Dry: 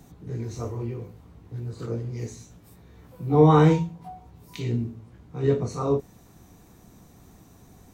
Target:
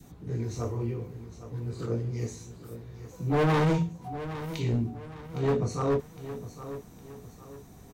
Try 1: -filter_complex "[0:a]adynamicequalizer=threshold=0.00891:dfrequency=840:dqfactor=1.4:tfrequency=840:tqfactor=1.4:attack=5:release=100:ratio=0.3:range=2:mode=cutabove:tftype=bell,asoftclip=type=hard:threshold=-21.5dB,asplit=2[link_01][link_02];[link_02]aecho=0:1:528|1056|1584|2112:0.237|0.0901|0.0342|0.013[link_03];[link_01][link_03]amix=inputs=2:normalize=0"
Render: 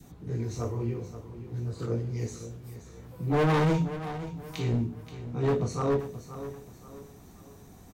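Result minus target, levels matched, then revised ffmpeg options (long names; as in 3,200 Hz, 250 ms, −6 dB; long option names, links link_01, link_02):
echo 283 ms early
-filter_complex "[0:a]adynamicequalizer=threshold=0.00891:dfrequency=840:dqfactor=1.4:tfrequency=840:tqfactor=1.4:attack=5:release=100:ratio=0.3:range=2:mode=cutabove:tftype=bell,asoftclip=type=hard:threshold=-21.5dB,asplit=2[link_01][link_02];[link_02]aecho=0:1:811|1622|2433|3244:0.237|0.0901|0.0342|0.013[link_03];[link_01][link_03]amix=inputs=2:normalize=0"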